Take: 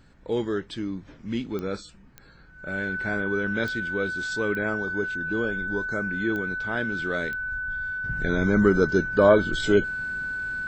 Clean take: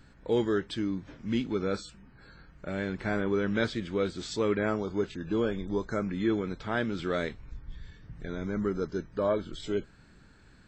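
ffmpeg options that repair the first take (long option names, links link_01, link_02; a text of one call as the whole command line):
ffmpeg -i in.wav -af "adeclick=threshold=4,bandreject=frequency=1500:width=30,agate=range=-21dB:threshold=-41dB,asetnsamples=nb_out_samples=441:pad=0,asendcmd='8.04 volume volume -11dB',volume=0dB" out.wav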